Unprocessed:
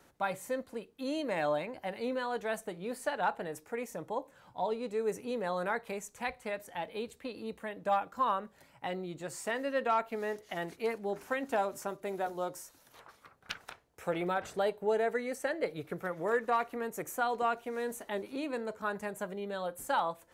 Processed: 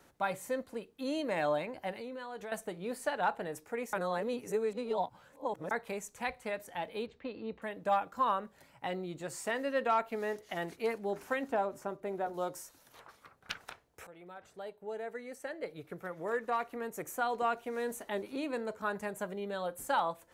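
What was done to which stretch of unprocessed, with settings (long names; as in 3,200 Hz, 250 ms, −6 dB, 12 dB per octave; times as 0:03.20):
0:01.91–0:02.52: downward compressor 5 to 1, threshold −40 dBFS
0:03.93–0:05.71: reverse
0:07.06–0:07.62: Gaussian smoothing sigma 2.1 samples
0:11.49–0:12.34: high-shelf EQ 2,500 Hz −11.5 dB
0:14.07–0:17.81: fade in, from −22.5 dB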